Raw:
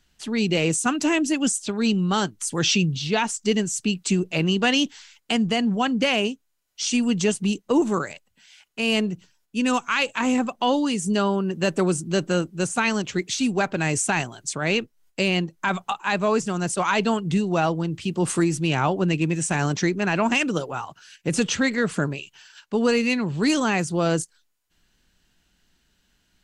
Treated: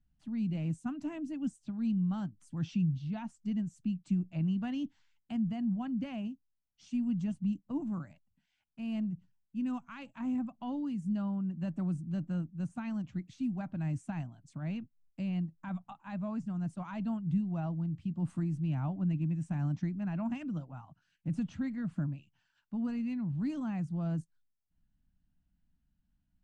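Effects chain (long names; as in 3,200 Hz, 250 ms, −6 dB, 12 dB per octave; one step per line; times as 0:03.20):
drawn EQ curve 160 Hz 0 dB, 290 Hz −6 dB, 420 Hz −30 dB, 640 Hz −13 dB, 6,300 Hz −29 dB
level −6 dB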